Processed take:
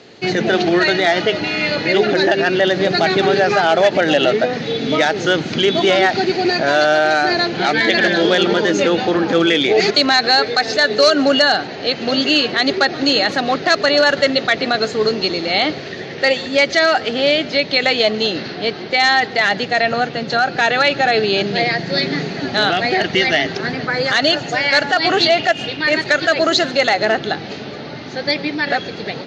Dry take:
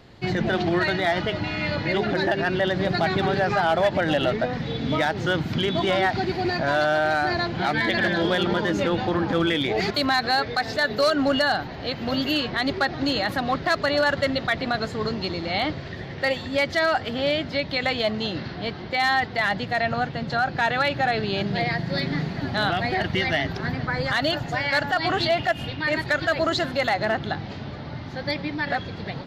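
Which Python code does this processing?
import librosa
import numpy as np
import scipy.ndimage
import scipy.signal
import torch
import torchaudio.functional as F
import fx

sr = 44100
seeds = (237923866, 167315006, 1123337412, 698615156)

y = fx.cabinet(x, sr, low_hz=220.0, low_slope=12, high_hz=7500.0, hz=(430.0, 1000.0, 2600.0, 4300.0, 6400.0), db=(6, -6, 4, 4, 9))
y = y + 10.0 ** (-23.0 / 20.0) * np.pad(y, (int(139 * sr / 1000.0), 0))[:len(y)]
y = y * librosa.db_to_amplitude(7.5)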